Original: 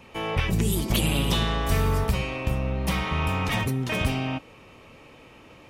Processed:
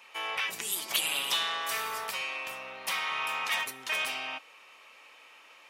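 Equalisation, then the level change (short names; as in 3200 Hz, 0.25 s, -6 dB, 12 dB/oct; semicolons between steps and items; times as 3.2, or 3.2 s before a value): HPF 1100 Hz 12 dB/oct; 0.0 dB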